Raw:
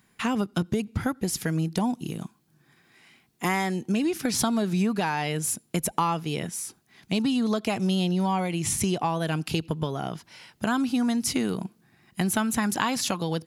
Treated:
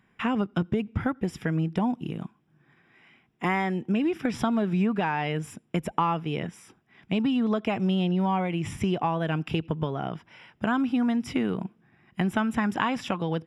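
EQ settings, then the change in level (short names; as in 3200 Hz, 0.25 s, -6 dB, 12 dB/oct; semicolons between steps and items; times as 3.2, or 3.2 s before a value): polynomial smoothing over 25 samples; 0.0 dB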